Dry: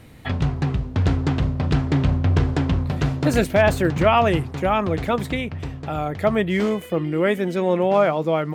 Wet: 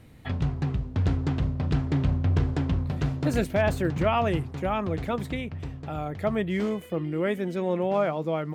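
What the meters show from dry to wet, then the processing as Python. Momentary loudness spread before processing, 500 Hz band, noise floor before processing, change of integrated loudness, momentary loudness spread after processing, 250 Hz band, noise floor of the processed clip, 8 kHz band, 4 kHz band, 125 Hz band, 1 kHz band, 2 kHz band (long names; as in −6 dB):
7 LU, −7.5 dB, −36 dBFS, −6.5 dB, 6 LU, −6.0 dB, −42 dBFS, −8.5 dB, −8.5 dB, −5.0 dB, −8.0 dB, −8.5 dB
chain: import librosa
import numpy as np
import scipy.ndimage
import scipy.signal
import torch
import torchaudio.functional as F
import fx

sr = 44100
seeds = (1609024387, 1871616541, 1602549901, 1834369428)

y = fx.low_shelf(x, sr, hz=350.0, db=4.0)
y = y * 10.0 ** (-8.5 / 20.0)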